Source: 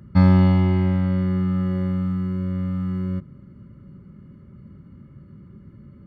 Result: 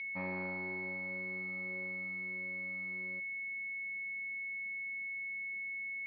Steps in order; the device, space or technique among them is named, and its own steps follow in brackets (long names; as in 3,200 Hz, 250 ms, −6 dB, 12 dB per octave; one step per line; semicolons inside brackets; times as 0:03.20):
toy sound module (linearly interpolated sample-rate reduction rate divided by 8×; switching amplifier with a slow clock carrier 2,200 Hz; loudspeaker in its box 720–3,700 Hz, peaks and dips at 740 Hz −9 dB, 1,200 Hz −9 dB, 1,900 Hz −10 dB, 2,900 Hz −5 dB)
level −5.5 dB